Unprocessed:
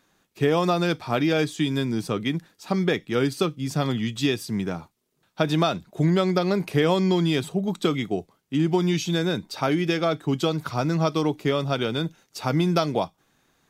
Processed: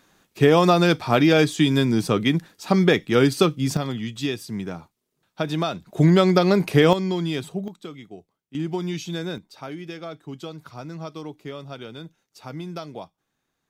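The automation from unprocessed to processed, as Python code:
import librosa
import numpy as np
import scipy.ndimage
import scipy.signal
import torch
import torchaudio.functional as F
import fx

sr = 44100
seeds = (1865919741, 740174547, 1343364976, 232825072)

y = fx.gain(x, sr, db=fx.steps((0.0, 5.5), (3.77, -3.0), (5.86, 5.0), (6.93, -3.5), (7.68, -14.5), (8.55, -5.5), (9.38, -12.0)))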